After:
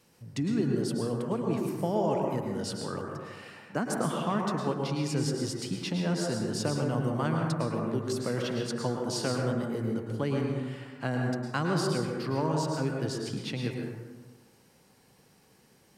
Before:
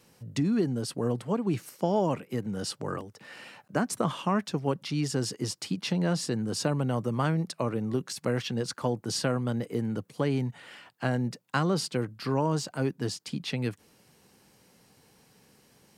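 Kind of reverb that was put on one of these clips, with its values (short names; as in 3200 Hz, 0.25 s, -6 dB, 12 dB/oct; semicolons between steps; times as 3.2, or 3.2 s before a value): plate-style reverb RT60 1.4 s, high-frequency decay 0.4×, pre-delay 95 ms, DRR 0.5 dB; gain -3.5 dB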